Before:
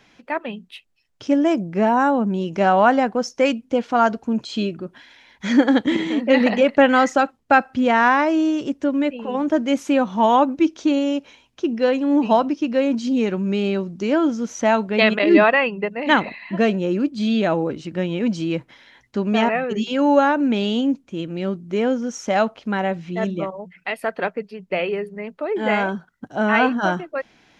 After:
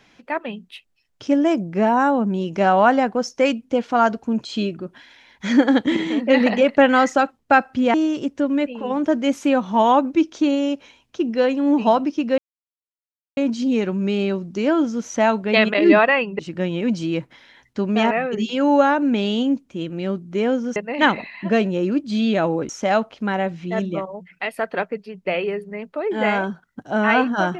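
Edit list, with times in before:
0:07.94–0:08.38: remove
0:12.82: splice in silence 0.99 s
0:15.84–0:17.77: move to 0:22.14

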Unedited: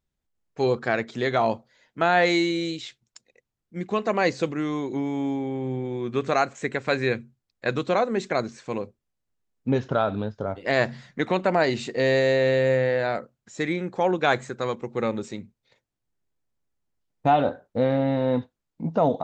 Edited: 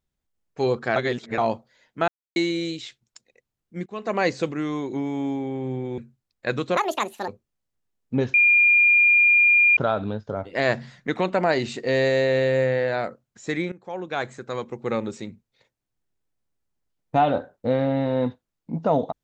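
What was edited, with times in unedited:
0:00.96–0:01.38: reverse
0:02.08–0:02.36: silence
0:03.86–0:04.17: fade in, from −23.5 dB
0:05.98–0:07.17: remove
0:07.96–0:08.82: play speed 169%
0:09.88: insert tone 2,410 Hz −13 dBFS 1.43 s
0:13.83–0:15.01: fade in, from −17 dB

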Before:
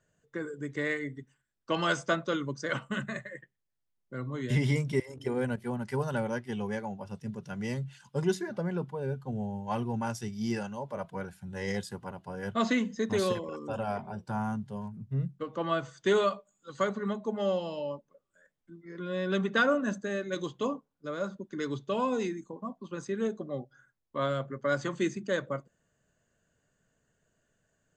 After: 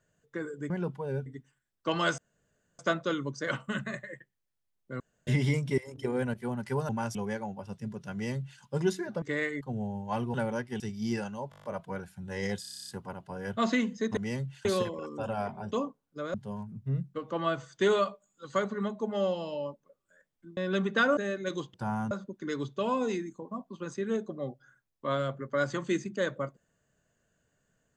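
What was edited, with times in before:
0:00.70–0:01.09: swap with 0:08.64–0:09.20
0:02.01: splice in room tone 0.61 s
0:04.22–0:04.49: fill with room tone
0:06.11–0:06.57: swap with 0:09.93–0:10.19
0:07.55–0:08.03: duplicate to 0:13.15
0:10.89: stutter 0.02 s, 8 plays
0:11.86: stutter 0.03 s, 10 plays
0:14.22–0:14.59: swap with 0:20.60–0:21.22
0:18.82–0:19.16: remove
0:19.76–0:20.03: remove

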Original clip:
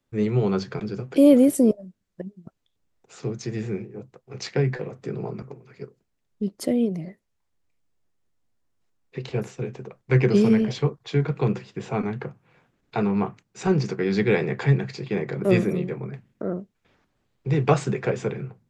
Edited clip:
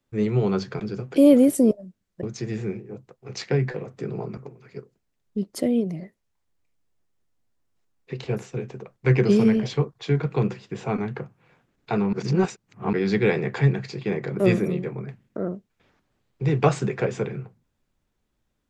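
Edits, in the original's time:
0:02.23–0:03.28: remove
0:13.18–0:13.98: reverse

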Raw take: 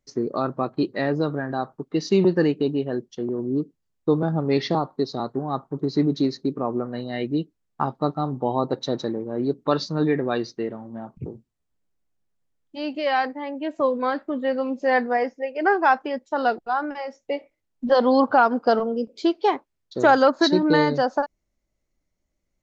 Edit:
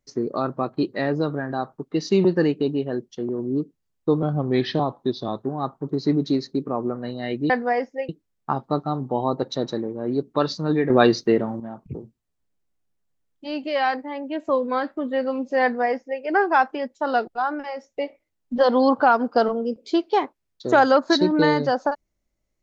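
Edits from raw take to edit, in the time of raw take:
0:04.22–0:05.35: play speed 92%
0:10.21–0:10.91: clip gain +9.5 dB
0:14.94–0:15.53: duplicate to 0:07.40

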